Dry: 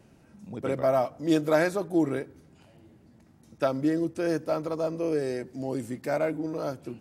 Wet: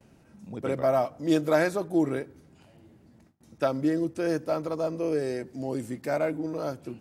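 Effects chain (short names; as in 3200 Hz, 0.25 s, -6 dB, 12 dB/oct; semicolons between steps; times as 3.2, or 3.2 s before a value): gate with hold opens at -48 dBFS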